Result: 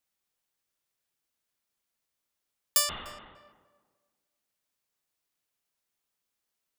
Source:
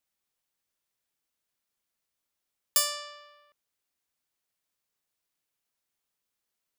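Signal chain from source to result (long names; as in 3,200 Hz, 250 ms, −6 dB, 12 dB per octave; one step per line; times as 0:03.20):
0:02.89–0:03.36: linear-prediction vocoder at 8 kHz whisper
tape delay 296 ms, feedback 33%, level −10.5 dB, low-pass 1,100 Hz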